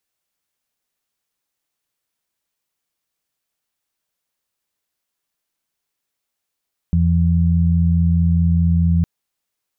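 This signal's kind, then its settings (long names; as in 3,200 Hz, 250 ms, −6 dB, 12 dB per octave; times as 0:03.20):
steady harmonic partials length 2.11 s, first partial 84.7 Hz, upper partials −1 dB, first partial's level −14.5 dB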